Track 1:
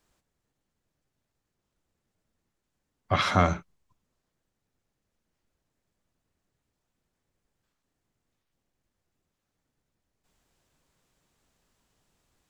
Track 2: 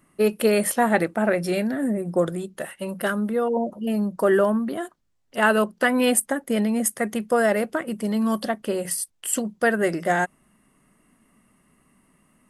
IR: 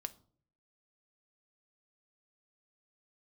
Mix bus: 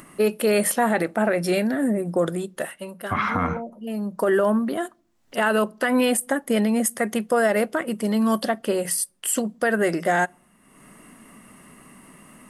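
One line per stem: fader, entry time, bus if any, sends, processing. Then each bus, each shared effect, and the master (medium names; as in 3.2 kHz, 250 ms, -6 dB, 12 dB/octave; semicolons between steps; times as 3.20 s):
-3.0 dB, 0.00 s, no send, ten-band graphic EQ 250 Hz +12 dB, 500 Hz -9 dB, 1 kHz +10 dB, 2 kHz +7 dB, 4 kHz -9 dB, 8 kHz -12 dB
+2.0 dB, 0.00 s, send -11.5 dB, bass shelf 130 Hz -8 dB; upward compressor, threshold -40 dBFS; auto duck -18 dB, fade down 0.45 s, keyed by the first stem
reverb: on, pre-delay 4 ms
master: peak limiter -12 dBFS, peak gain reduction 10.5 dB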